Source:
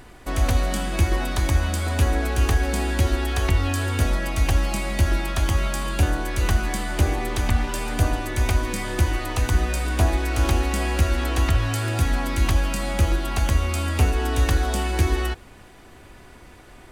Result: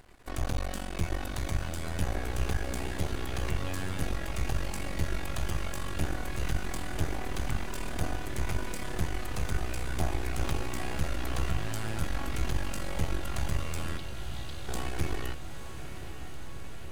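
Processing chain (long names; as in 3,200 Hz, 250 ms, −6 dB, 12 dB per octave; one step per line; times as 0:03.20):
half-wave rectification
0:13.97–0:14.68: flat-topped band-pass 3,700 Hz, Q 2.3
feedback delay with all-pass diffusion 921 ms, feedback 75%, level −10 dB
level −7.5 dB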